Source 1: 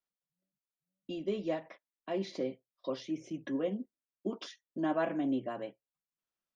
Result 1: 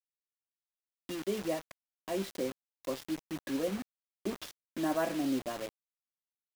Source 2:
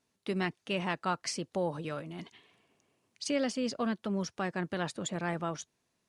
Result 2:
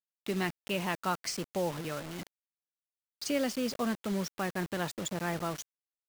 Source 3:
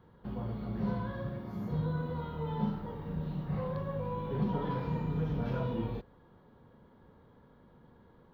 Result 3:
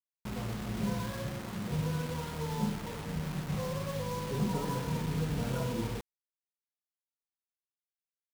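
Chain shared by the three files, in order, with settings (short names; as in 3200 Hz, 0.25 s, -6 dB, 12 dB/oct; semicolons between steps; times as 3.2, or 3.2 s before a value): bit-crush 7-bit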